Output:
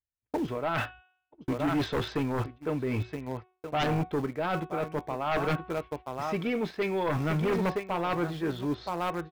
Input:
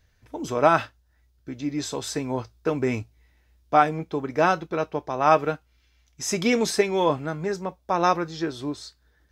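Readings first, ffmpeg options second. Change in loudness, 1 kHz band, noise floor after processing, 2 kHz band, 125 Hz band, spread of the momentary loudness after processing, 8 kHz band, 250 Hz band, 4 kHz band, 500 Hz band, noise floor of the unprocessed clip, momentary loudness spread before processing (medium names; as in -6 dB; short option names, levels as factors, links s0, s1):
-6.5 dB, -8.5 dB, -80 dBFS, -5.0 dB, +1.0 dB, 7 LU, -17.5 dB, -2.5 dB, -5.5 dB, -6.0 dB, -64 dBFS, 13 LU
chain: -filter_complex "[0:a]lowpass=f=3200:w=0.5412,lowpass=f=3200:w=1.3066,aecho=1:1:972:0.2,asplit=2[s0][s1];[s1]acrusher=bits=5:mix=0:aa=0.000001,volume=0.251[s2];[s0][s2]amix=inputs=2:normalize=0,agate=range=0.00562:threshold=0.00708:ratio=16:detection=peak,equalizer=f=140:w=1.6:g=3,bandreject=f=369:t=h:w=4,bandreject=f=738:t=h:w=4,bandreject=f=1107:t=h:w=4,bandreject=f=1476:t=h:w=4,bandreject=f=1845:t=h:w=4,bandreject=f=2214:t=h:w=4,bandreject=f=2583:t=h:w=4,bandreject=f=2952:t=h:w=4,bandreject=f=3321:t=h:w=4,bandreject=f=3690:t=h:w=4,areverse,acompressor=threshold=0.0447:ratio=10,areverse,tremolo=f=0.53:d=0.48,aeval=exprs='0.119*sin(PI/2*2.51*val(0)/0.119)':c=same,volume=0.596"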